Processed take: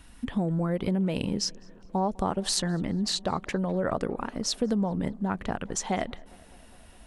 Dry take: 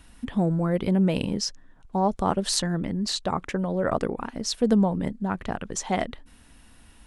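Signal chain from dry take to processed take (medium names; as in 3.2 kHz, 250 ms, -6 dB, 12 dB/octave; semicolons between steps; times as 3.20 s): compression, threshold -23 dBFS, peak gain reduction 7.5 dB; on a send: tape echo 203 ms, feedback 82%, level -23.5 dB, low-pass 2.7 kHz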